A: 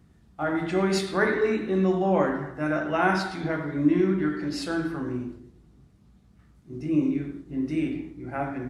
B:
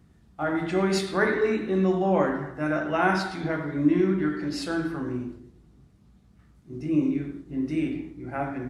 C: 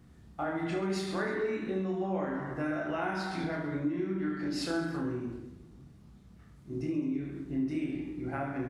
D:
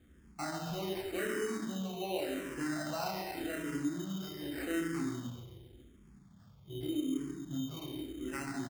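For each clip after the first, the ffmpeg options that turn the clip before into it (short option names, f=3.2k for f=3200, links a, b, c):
-af anull
-filter_complex "[0:a]acompressor=threshold=-33dB:ratio=6,asplit=2[a][b];[b]aecho=0:1:30|72|130.8|213.1|328.4:0.631|0.398|0.251|0.158|0.1[c];[a][c]amix=inputs=2:normalize=0"
-filter_complex "[0:a]asplit=2[a][b];[b]adelay=139,lowpass=f=2.7k:p=1,volume=-10dB,asplit=2[c][d];[d]adelay=139,lowpass=f=2.7k:p=1,volume=0.52,asplit=2[e][f];[f]adelay=139,lowpass=f=2.7k:p=1,volume=0.52,asplit=2[g][h];[h]adelay=139,lowpass=f=2.7k:p=1,volume=0.52,asplit=2[i][j];[j]adelay=139,lowpass=f=2.7k:p=1,volume=0.52,asplit=2[k][l];[l]adelay=139,lowpass=f=2.7k:p=1,volume=0.52[m];[a][c][e][g][i][k][m]amix=inputs=7:normalize=0,acrusher=samples=13:mix=1:aa=0.000001,asplit=2[n][o];[o]afreqshift=-0.86[p];[n][p]amix=inputs=2:normalize=1,volume=-1.5dB"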